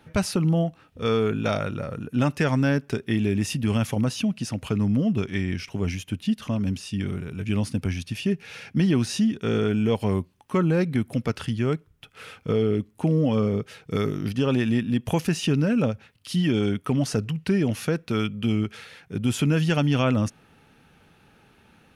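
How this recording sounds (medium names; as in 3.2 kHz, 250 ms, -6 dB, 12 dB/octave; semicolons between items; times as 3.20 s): noise floor -58 dBFS; spectral tilt -6.5 dB/octave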